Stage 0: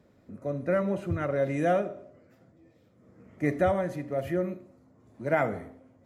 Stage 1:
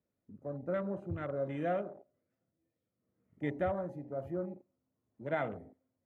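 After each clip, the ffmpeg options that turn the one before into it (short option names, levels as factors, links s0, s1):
-af "afwtdn=0.0141,volume=0.376"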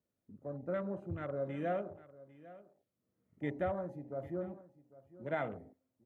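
-af "aecho=1:1:800:0.119,volume=0.794"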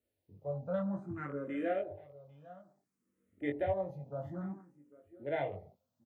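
-filter_complex "[0:a]asplit=2[s0][s1];[s1]adelay=21,volume=0.668[s2];[s0][s2]amix=inputs=2:normalize=0,asplit=2[s3][s4];[s4]afreqshift=0.58[s5];[s3][s5]amix=inputs=2:normalize=1,volume=1.33"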